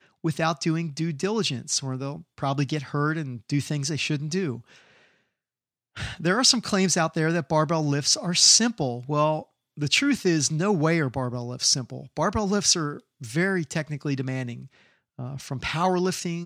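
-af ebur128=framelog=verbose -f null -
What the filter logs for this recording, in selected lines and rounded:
Integrated loudness:
  I:         -24.0 LUFS
  Threshold: -34.6 LUFS
Loudness range:
  LRA:         7.8 LU
  Threshold: -44.3 LUFS
  LRA low:   -28.6 LUFS
  LRA high:  -20.8 LUFS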